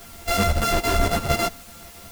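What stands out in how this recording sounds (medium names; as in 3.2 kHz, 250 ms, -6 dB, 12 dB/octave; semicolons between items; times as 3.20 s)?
a buzz of ramps at a fixed pitch in blocks of 64 samples; chopped level 3.6 Hz, depth 65%, duty 85%; a quantiser's noise floor 8-bit, dither triangular; a shimmering, thickened sound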